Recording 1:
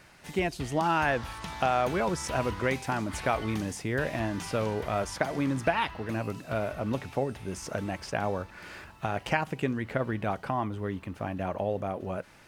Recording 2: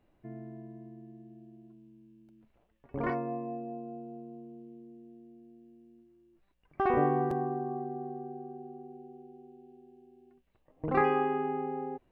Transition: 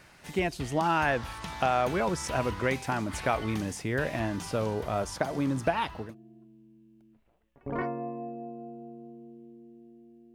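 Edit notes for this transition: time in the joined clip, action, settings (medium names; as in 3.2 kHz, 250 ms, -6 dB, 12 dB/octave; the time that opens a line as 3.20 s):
recording 1
4.36–6.15 s: peaking EQ 2.1 kHz -5.5 dB 1.1 oct
6.07 s: go over to recording 2 from 1.35 s, crossfade 0.16 s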